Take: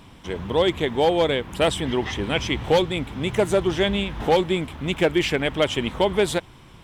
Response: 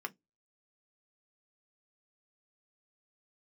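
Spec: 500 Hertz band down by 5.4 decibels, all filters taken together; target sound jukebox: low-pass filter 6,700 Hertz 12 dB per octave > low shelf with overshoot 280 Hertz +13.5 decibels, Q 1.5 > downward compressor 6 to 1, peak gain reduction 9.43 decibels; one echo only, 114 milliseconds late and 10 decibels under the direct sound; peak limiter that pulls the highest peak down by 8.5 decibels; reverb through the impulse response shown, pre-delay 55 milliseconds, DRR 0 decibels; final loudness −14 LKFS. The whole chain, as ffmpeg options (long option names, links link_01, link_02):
-filter_complex "[0:a]equalizer=frequency=500:width_type=o:gain=-4.5,alimiter=limit=-18dB:level=0:latency=1,aecho=1:1:114:0.316,asplit=2[link_01][link_02];[1:a]atrim=start_sample=2205,adelay=55[link_03];[link_02][link_03]afir=irnorm=-1:irlink=0,volume=-1dB[link_04];[link_01][link_04]amix=inputs=2:normalize=0,lowpass=6700,lowshelf=frequency=280:width_type=q:width=1.5:gain=13.5,acompressor=threshold=-17dB:ratio=6,volume=8dB"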